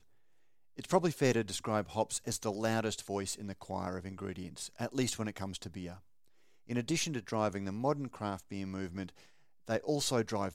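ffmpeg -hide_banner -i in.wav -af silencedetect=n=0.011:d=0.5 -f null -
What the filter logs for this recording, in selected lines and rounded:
silence_start: 0.00
silence_end: 0.79 | silence_duration: 0.79
silence_start: 5.94
silence_end: 6.70 | silence_duration: 0.77
silence_start: 9.09
silence_end: 9.69 | silence_duration: 0.60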